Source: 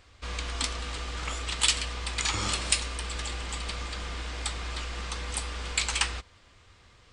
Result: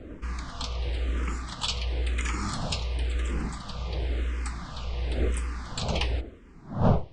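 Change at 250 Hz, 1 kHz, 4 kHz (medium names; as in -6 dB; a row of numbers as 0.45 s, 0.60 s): +10.0 dB, +0.5 dB, -5.5 dB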